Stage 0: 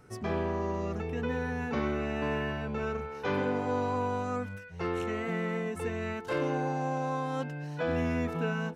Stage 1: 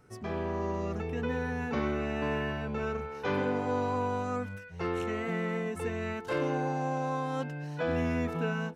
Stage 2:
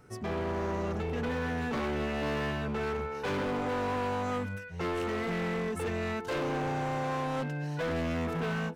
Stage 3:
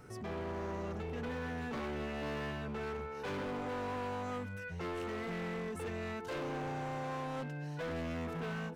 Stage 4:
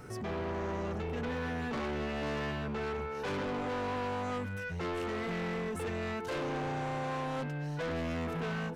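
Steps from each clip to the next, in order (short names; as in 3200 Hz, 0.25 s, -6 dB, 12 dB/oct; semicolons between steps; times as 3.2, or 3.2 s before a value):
AGC gain up to 4 dB; gain -4 dB
overloaded stage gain 33 dB; gain +3.5 dB
limiter -39 dBFS, peak gain reduction 9.5 dB; gain +2.5 dB
soft clip -38 dBFS, distortion -20 dB; gain +6.5 dB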